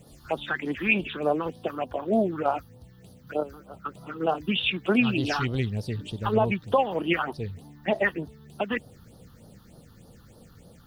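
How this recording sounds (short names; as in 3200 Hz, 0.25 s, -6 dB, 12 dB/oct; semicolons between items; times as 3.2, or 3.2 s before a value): a quantiser's noise floor 12-bit, dither triangular; phasing stages 6, 3.3 Hz, lowest notch 580–2300 Hz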